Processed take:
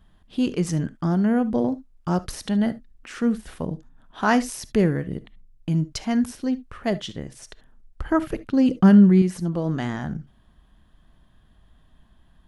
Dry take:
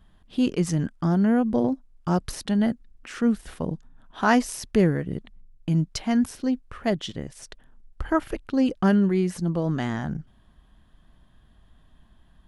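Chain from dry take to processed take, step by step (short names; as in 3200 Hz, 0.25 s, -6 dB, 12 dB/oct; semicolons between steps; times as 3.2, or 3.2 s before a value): 8.1–9.22 bell 150 Hz +10.5 dB 1.3 oct; reverb, pre-delay 3 ms, DRR 16 dB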